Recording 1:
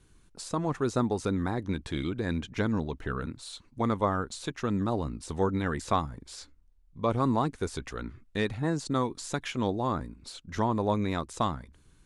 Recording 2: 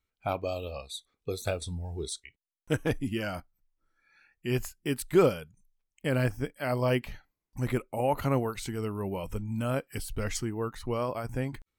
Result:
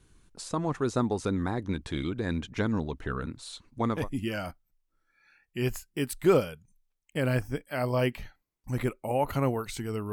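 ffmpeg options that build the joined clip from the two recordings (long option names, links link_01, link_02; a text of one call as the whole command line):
ffmpeg -i cue0.wav -i cue1.wav -filter_complex "[0:a]apad=whole_dur=10.12,atrim=end=10.12,atrim=end=4.09,asetpts=PTS-STARTPTS[link_01];[1:a]atrim=start=2.76:end=9.01,asetpts=PTS-STARTPTS[link_02];[link_01][link_02]acrossfade=duration=0.22:curve1=tri:curve2=tri" out.wav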